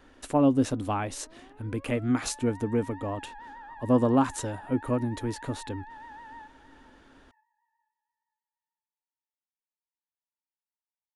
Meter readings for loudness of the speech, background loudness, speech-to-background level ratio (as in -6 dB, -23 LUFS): -28.0 LUFS, -46.5 LUFS, 18.5 dB